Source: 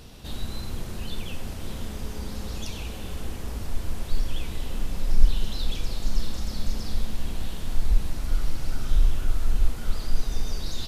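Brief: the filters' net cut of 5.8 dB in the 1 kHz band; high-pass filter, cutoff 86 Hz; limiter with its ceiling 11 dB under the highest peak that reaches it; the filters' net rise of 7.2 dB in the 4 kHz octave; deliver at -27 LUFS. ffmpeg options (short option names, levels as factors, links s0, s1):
-af "highpass=86,equalizer=f=1000:t=o:g=-8.5,equalizer=f=4000:t=o:g=9,volume=3.16,alimiter=limit=0.119:level=0:latency=1"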